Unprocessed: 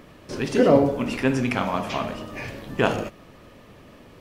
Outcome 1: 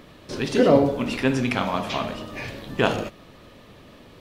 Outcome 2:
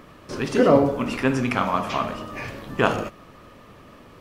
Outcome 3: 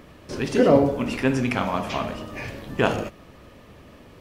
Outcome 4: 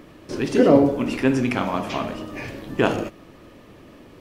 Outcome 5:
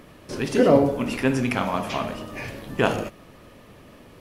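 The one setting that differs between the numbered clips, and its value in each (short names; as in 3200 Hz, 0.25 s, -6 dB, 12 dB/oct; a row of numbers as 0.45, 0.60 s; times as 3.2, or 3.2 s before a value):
bell, frequency: 3800, 1200, 69, 320, 11000 Hz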